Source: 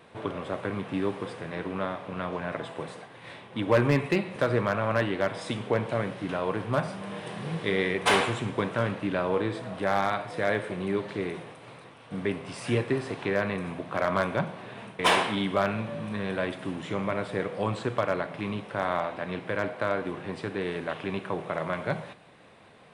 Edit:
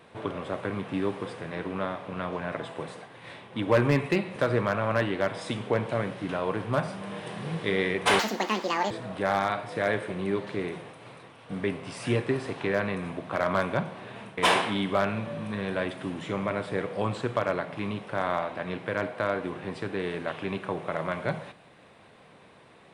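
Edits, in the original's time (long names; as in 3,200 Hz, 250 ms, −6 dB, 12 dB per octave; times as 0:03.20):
0:08.19–0:09.52: play speed 186%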